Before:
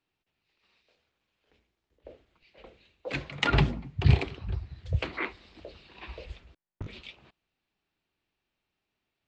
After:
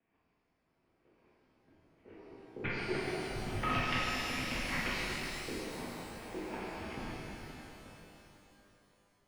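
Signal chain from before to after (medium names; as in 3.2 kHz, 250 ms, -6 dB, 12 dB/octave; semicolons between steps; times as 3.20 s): slices played last to first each 165 ms, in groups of 4; level-controlled noise filter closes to 830 Hz, open at -21.5 dBFS; treble shelf 2 kHz +8 dB; compression 4:1, threshold -38 dBFS, peak gain reduction 19.5 dB; mistuned SSB -140 Hz 160–3400 Hz; pitch-shifted reverb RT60 3.2 s, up +12 st, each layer -8 dB, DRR -8.5 dB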